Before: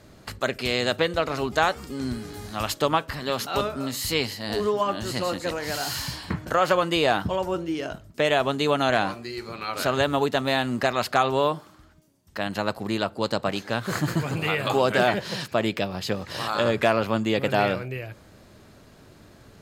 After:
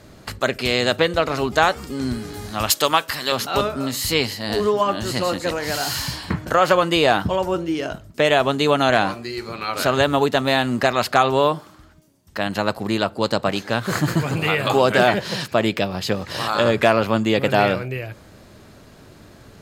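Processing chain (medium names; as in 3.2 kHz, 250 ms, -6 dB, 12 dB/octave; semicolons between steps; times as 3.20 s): 2.70–3.32 s: tilt EQ +3 dB/octave; trim +5 dB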